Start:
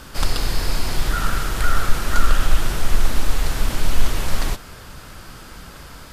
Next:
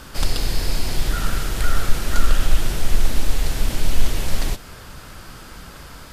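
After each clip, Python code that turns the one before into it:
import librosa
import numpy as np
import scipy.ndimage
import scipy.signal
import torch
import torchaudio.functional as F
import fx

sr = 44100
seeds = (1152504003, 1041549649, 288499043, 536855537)

y = fx.dynamic_eq(x, sr, hz=1200.0, q=1.3, threshold_db=-41.0, ratio=4.0, max_db=-6)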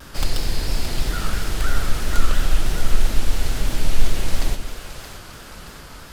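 y = fx.self_delay(x, sr, depth_ms=0.14)
y = fx.echo_split(y, sr, split_hz=390.0, low_ms=129, high_ms=621, feedback_pct=52, wet_db=-9.0)
y = fx.vibrato_shape(y, sr, shape='saw_down', rate_hz=3.0, depth_cents=100.0)
y = y * 10.0 ** (-1.0 / 20.0)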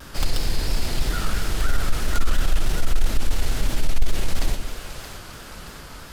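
y = 10.0 ** (-8.0 / 20.0) * np.tanh(x / 10.0 ** (-8.0 / 20.0))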